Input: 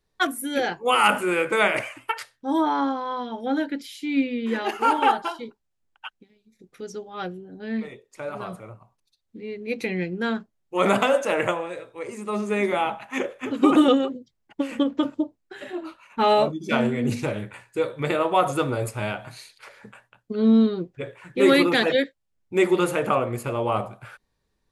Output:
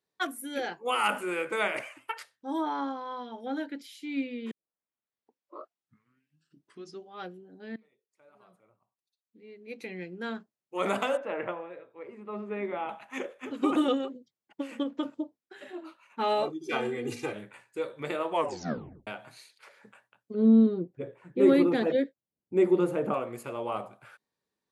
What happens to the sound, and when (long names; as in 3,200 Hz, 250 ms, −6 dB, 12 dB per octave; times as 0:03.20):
0:04.51: tape start 2.67 s
0:07.76–0:10.37: fade in quadratic, from −22.5 dB
0:11.17–0:12.89: high-frequency loss of the air 440 metres
0:16.43–0:17.33: comb filter 2.5 ms, depth 98%
0:18.31: tape stop 0.76 s
0:20.34–0:23.14: tilt shelving filter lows +9.5 dB, about 830 Hz
whole clip: high-pass filter 190 Hz 12 dB per octave; level −8.5 dB